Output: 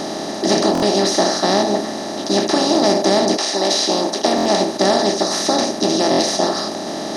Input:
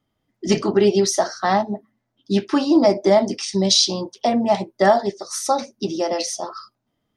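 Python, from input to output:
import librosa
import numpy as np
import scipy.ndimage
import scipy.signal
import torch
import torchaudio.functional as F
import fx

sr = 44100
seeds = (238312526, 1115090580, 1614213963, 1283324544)

y = fx.bin_compress(x, sr, power=0.2)
y = fx.highpass(y, sr, hz=fx.line((3.36, 420.0), (4.67, 120.0)), slope=12, at=(3.36, 4.67), fade=0.02)
y = fx.buffer_glitch(y, sr, at_s=(0.73, 4.36, 6.1), block=1024, repeats=3)
y = F.gain(torch.from_numpy(y), -7.0).numpy()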